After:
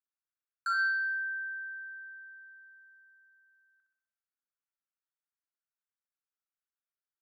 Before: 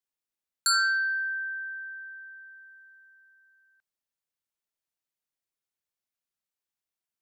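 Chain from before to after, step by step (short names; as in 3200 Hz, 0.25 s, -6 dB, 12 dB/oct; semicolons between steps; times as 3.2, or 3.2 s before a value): band-pass 1400 Hz, Q 3.4; on a send: flutter echo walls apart 10.8 m, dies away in 0.65 s; on the sum: gain -1.5 dB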